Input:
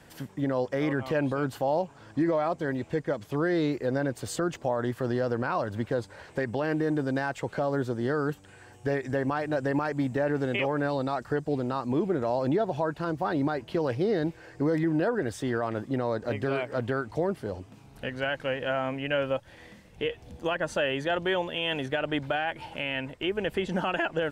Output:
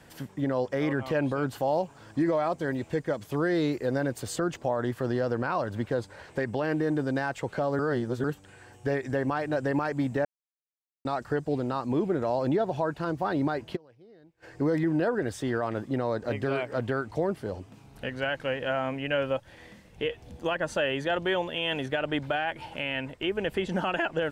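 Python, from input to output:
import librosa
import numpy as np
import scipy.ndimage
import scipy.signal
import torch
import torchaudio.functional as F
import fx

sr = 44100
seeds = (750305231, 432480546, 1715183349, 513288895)

y = fx.high_shelf(x, sr, hz=7200.0, db=7.0, at=(1.58, 4.23))
y = fx.gate_flip(y, sr, shuts_db=-37.0, range_db=-28, at=(13.75, 14.42), fade=0.02)
y = fx.edit(y, sr, fx.reverse_span(start_s=7.79, length_s=0.45),
    fx.silence(start_s=10.25, length_s=0.8), tone=tone)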